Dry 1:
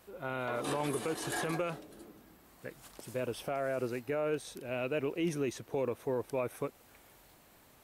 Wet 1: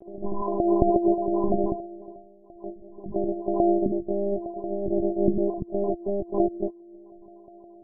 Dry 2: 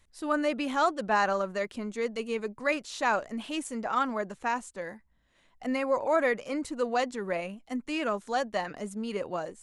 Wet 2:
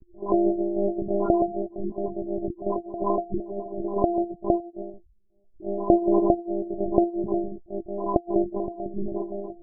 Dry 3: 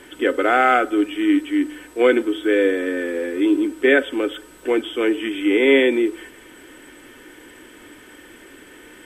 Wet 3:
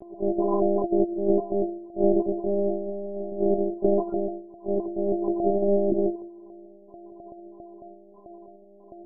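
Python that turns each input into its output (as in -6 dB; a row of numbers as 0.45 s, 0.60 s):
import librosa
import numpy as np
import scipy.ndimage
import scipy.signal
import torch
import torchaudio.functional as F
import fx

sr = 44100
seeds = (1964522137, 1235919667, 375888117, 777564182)

y = np.r_[np.sort(x[:len(x) // 128 * 128].reshape(-1, 128), axis=1).ravel(), x[len(x) // 128 * 128:]]
y = fx.spec_topn(y, sr, count=4)
y = fx.env_lowpass_down(y, sr, base_hz=2900.0, full_db=-15.5)
y = fx.lpc_monotone(y, sr, seeds[0], pitch_hz=200.0, order=16)
y = y * 10.0 ** (-26 / 20.0) / np.sqrt(np.mean(np.square(y)))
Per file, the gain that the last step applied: +17.0 dB, +10.0 dB, +3.0 dB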